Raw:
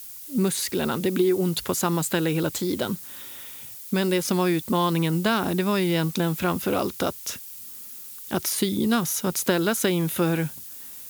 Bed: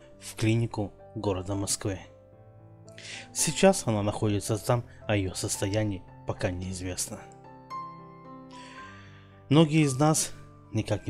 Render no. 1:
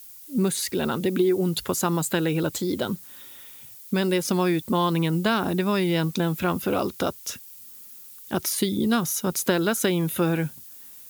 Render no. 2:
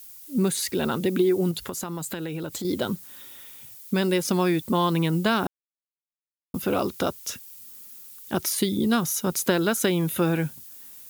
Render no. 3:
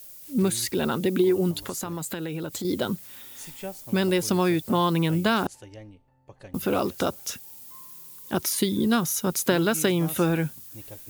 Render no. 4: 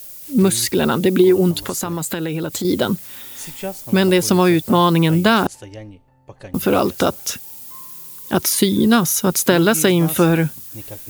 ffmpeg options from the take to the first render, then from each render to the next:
-af "afftdn=nr=6:nf=-40"
-filter_complex "[0:a]asettb=1/sr,asplit=3[a][b][c];[a]atrim=end=1.514[d];[b]atrim=start=1.51:end=2.65,asetpts=PTS-STARTPTS,afade=t=in:d=0.004:c=qsin,afade=t=out:st=1.136:d=0.004:c=qsin,acompressor=threshold=-28dB:ratio=6:attack=3.2:release=140:knee=1:detection=peak[e];[c]atrim=start=2.646[f];[d][e]acrossfade=d=0.004:c1=hsin:c2=qsin[g];[g][f]acrossfade=d=0.004:c1=qsin:c2=hsin,asplit=3[h][i][j];[h]atrim=end=5.47,asetpts=PTS-STARTPTS,afade=t=out:st=5.466:d=0.004:c=hsin[k];[i]atrim=start=5.47:end=6.54,asetpts=PTS-STARTPTS,volume=0[l];[j]atrim=start=6.54,asetpts=PTS-STARTPTS,afade=t=in:d=0.004:c=hsin[m];[k][l][m]concat=n=3:v=0:a=1"
-filter_complex "[1:a]volume=-16.5dB[a];[0:a][a]amix=inputs=2:normalize=0"
-af "volume=8.5dB,alimiter=limit=-2dB:level=0:latency=1"

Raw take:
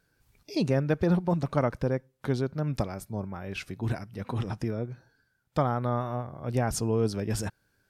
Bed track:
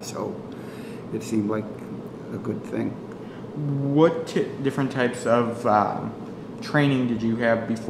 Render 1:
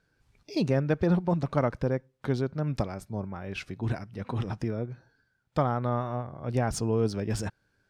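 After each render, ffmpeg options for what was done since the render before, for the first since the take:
-af "adynamicsmooth=sensitivity=7.5:basefreq=7.6k"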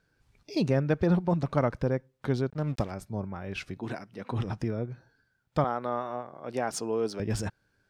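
-filter_complex "[0:a]asettb=1/sr,asplit=3[a][b][c];[a]atrim=end=2.504[d];[b]atrim=start=2.5:end=2.91,asetpts=PTS-STARTPTS,afade=t=in:d=0.004:c=qsin,afade=t=out:st=0.406:d=0.004:c=qsin,aeval=exprs='sgn(val(0))*max(abs(val(0))-0.00473,0)':c=same[e];[c]atrim=start=2.906[f];[d][e]acrossfade=d=0.004:c1=hsin:c2=qsin[g];[g][f]acrossfade=d=0.004:c1=qsin:c2=hsin,asettb=1/sr,asplit=3[h][i][j];[h]atrim=end=3.774[k];[i]atrim=start=3.77:end=4.32,asetpts=PTS-STARTPTS,afade=t=in:d=0.004:c=qsin,afade=t=out:st=0.546:d=0.004:c=qsin,highpass=220[l];[j]atrim=start=4.316[m];[k][l]acrossfade=d=0.004:c1=hsin:c2=qsin[n];[n][m]acrossfade=d=0.004:c1=qsin:c2=hsin,asettb=1/sr,asplit=3[o][p][q];[o]atrim=end=5.644[r];[p]atrim=start=5.64:end=7.2,asetpts=PTS-STARTPTS,afade=t=in:d=0.004:c=qsin,afade=t=out:st=1.556:d=0.004:c=qsin,highpass=310[s];[q]atrim=start=7.196[t];[r][s]acrossfade=d=0.004:c1=hsin:c2=qsin[u];[u][t]acrossfade=d=0.004:c1=qsin:c2=hsin"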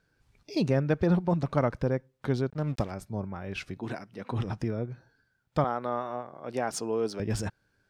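-af anull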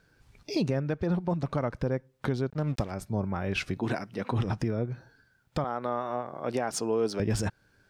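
-filter_complex "[0:a]asplit=2[a][b];[b]acompressor=threshold=-33dB:ratio=6,volume=2dB[c];[a][c]amix=inputs=2:normalize=0,alimiter=limit=-17.5dB:level=0:latency=1:release=496"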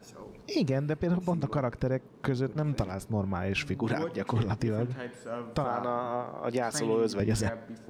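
-filter_complex "[1:a]volume=-17dB[a];[0:a][a]amix=inputs=2:normalize=0"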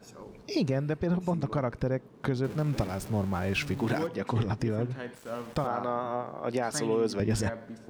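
-filter_complex "[0:a]asettb=1/sr,asplit=3[a][b][c];[a]atrim=end=2.444[d];[b]atrim=start=2.44:end=4.07,asetpts=PTS-STARTPTS,afade=t=in:d=0.004:c=qsin,afade=t=out:st=1.626:d=0.004:c=qsin,aeval=exprs='val(0)+0.5*0.0112*sgn(val(0))':c=same[e];[c]atrim=start=4.066[f];[d][e]acrossfade=d=0.004:c1=hsin:c2=qsin[g];[g][f]acrossfade=d=0.004:c1=qsin:c2=hsin,asettb=1/sr,asplit=3[h][i][j];[h]atrim=end=5.154[k];[i]atrim=start=5.15:end=5.67,asetpts=PTS-STARTPTS,afade=t=in:d=0.004:c=qsin,afade=t=out:st=0.516:d=0.004:c=qsin,aeval=exprs='val(0)*gte(abs(val(0)),0.00562)':c=same[l];[j]atrim=start=5.666[m];[k][l]acrossfade=d=0.004:c1=hsin:c2=qsin[n];[n][m]acrossfade=d=0.004:c1=qsin:c2=hsin"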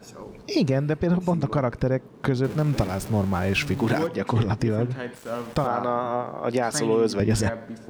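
-af "volume=6dB"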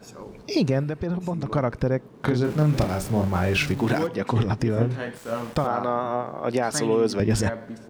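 -filter_complex "[0:a]asettb=1/sr,asplit=3[a][b][c];[a]atrim=end=0.834[d];[b]atrim=start=0.83:end=1.46,asetpts=PTS-STARTPTS,afade=t=in:d=0.004:c=qsin,afade=t=out:st=0.626:d=0.004:c=qsin,acompressor=threshold=-26dB:ratio=2:attack=3.2:release=140:knee=1:detection=peak[e];[c]atrim=start=1.456[f];[d][e]acrossfade=d=0.004:c1=hsin:c2=qsin[g];[g][f]acrossfade=d=0.004:c1=qsin:c2=hsin,asplit=3[h][i][j];[h]afade=t=out:st=2.26:d=0.02[k];[i]asplit=2[l][m];[m]adelay=33,volume=-5dB[n];[l][n]amix=inputs=2:normalize=0,afade=t=in:st=2.26:d=0.02,afade=t=out:st=3.71:d=0.02[o];[j]afade=t=in:st=3.71:d=0.02[p];[k][o][p]amix=inputs=3:normalize=0,asettb=1/sr,asplit=3[q][r][s];[q]atrim=end=4.744[t];[r]atrim=start=4.74:end=5.5,asetpts=PTS-STARTPTS,afade=t=in:d=0.004:c=qsin,afade=t=out:st=0.756:d=0.004:c=qsin,asplit=2[u][v];[v]adelay=26,volume=-3dB[w];[u][w]amix=inputs=2:normalize=0,atrim=end_sample=33516[x];[s]atrim=start=5.496[y];[t][x]acrossfade=d=0.004:c1=hsin:c2=qsin[z];[z][y]acrossfade=d=0.004:c1=qsin:c2=hsin"

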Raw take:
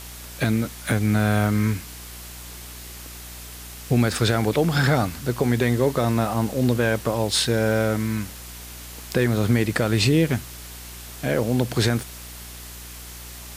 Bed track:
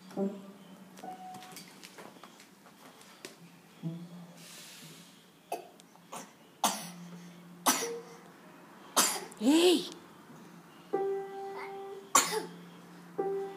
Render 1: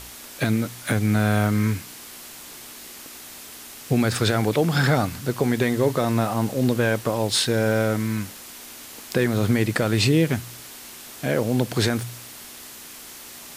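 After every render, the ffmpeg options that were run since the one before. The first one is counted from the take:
-af "bandreject=f=60:t=h:w=4,bandreject=f=120:t=h:w=4,bandreject=f=180:t=h:w=4"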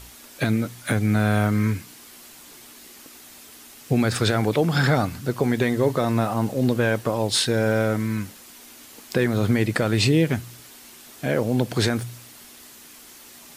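-af "afftdn=nr=6:nf=-41"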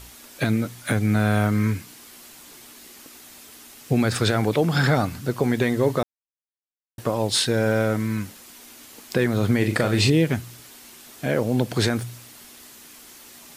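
-filter_complex "[0:a]asettb=1/sr,asplit=3[a][b][c];[a]atrim=end=9.584[d];[b]atrim=start=9.58:end=10.1,asetpts=PTS-STARTPTS,afade=t=in:d=0.004:c=qsin,afade=t=out:st=0.516:d=0.004:c=qsin,asplit=2[e][f];[f]adelay=39,volume=-6.5dB[g];[e][g]amix=inputs=2:normalize=0,atrim=end_sample=22932[h];[c]atrim=start=10.096[i];[d][h]acrossfade=d=0.004:c1=hsin:c2=qsin[j];[j][i]acrossfade=d=0.004:c1=qsin:c2=hsin,asplit=3[k][l][m];[k]atrim=end=6.03,asetpts=PTS-STARTPTS,afade=t=out:st=6.026:d=0.004:c=hsin[n];[l]atrim=start=6.03:end=6.98,asetpts=PTS-STARTPTS,volume=0[o];[m]atrim=start=6.98,asetpts=PTS-STARTPTS,afade=t=in:d=0.004:c=hsin[p];[n][o][p]concat=n=3:v=0:a=1"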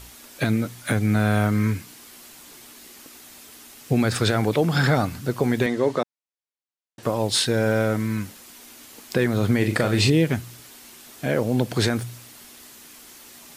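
-filter_complex "[0:a]asettb=1/sr,asplit=3[a][b][c];[a]atrim=end=5.664[d];[b]atrim=start=5.66:end=7.03,asetpts=PTS-STARTPTS,afade=t=in:d=0.004:c=qsin,afade=t=out:st=1.366:d=0.004:c=qsin,highpass=210,lowpass=7.1k[e];[c]atrim=start=7.026[f];[d][e]acrossfade=d=0.004:c1=hsin:c2=qsin[g];[g][f]acrossfade=d=0.004:c1=qsin:c2=hsin"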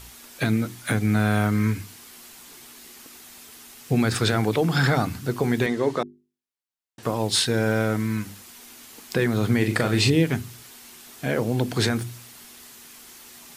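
-af "equalizer=f=570:t=o:w=0.33:g=-5,bandreject=f=50:t=h:w=6,bandreject=f=100:t=h:w=6,bandreject=f=150:t=h:w=6,bandreject=f=200:t=h:w=6,bandreject=f=250:t=h:w=6,bandreject=f=300:t=h:w=6,bandreject=f=350:t=h:w=6,bandreject=f=400:t=h:w=6"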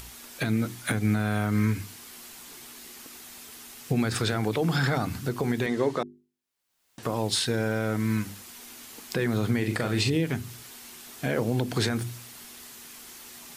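-af "alimiter=limit=-15.5dB:level=0:latency=1:release=173,acompressor=mode=upward:threshold=-43dB:ratio=2.5"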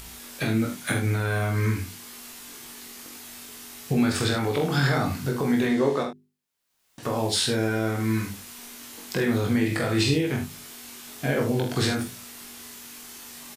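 -filter_complex "[0:a]asplit=2[a][b];[b]adelay=21,volume=-4dB[c];[a][c]amix=inputs=2:normalize=0,aecho=1:1:45|78:0.501|0.299"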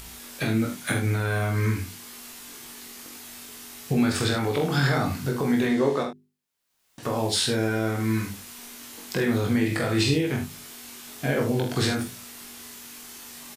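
-af anull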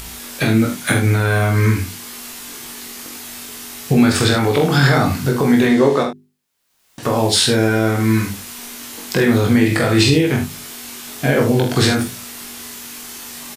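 -af "volume=9.5dB,alimiter=limit=-2dB:level=0:latency=1"

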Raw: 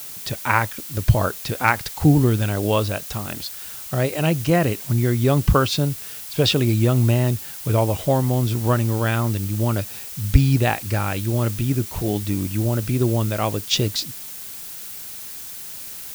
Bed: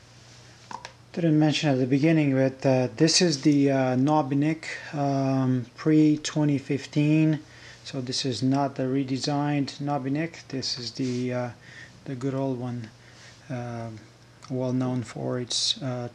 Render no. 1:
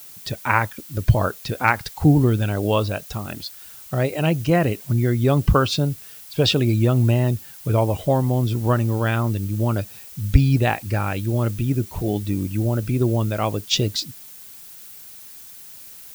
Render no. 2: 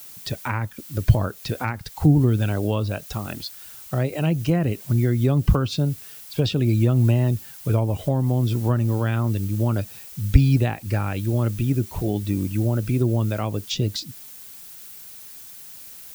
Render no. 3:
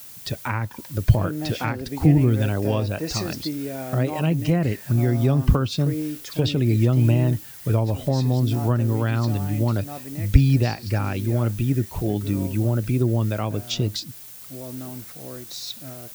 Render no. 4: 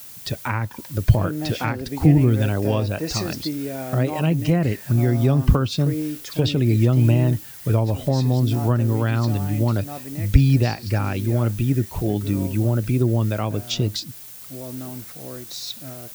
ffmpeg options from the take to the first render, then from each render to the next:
-af "afftdn=nr=8:nf=-35"
-filter_complex "[0:a]acrossover=split=300[a][b];[b]acompressor=threshold=-26dB:ratio=6[c];[a][c]amix=inputs=2:normalize=0"
-filter_complex "[1:a]volume=-9dB[a];[0:a][a]amix=inputs=2:normalize=0"
-af "volume=1.5dB,alimiter=limit=-2dB:level=0:latency=1"

